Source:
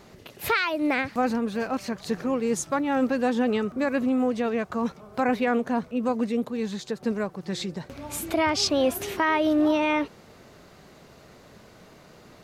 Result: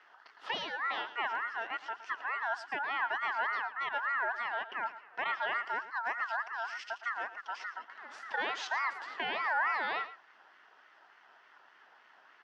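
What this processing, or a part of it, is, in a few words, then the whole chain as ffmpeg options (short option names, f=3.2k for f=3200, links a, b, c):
voice changer toy: -filter_complex "[0:a]asettb=1/sr,asplit=3[a][b][c];[a]atrim=end=5.514[d];[b]atrim=start=5.51:end=7.47,asetpts=PTS-STARTPTS,afade=t=in:d=0.004:c=qsin,afade=t=out:st=1.956:d=0.004:c=qsin,highshelf=f=2.7k:t=q:w=1.5:g=8[e];[c]atrim=start=7.466[f];[d][e]acrossfade=d=0.004:c1=hsin:c2=qsin[g];[g][f]acrossfade=d=0.004:c1=qsin:c2=hsin,aeval=exprs='val(0)*sin(2*PI*1400*n/s+1400*0.2/3.4*sin(2*PI*3.4*n/s))':c=same,highpass=520,equalizer=f=530:t=q:w=4:g=-7,equalizer=f=1.1k:t=q:w=4:g=-4,equalizer=f=2.3k:t=q:w=4:g=-9,equalizer=f=3.8k:t=q:w=4:g=-9,lowpass=f=4.1k:w=0.5412,lowpass=f=4.1k:w=1.3066,aecho=1:1:113:0.2,volume=-4dB"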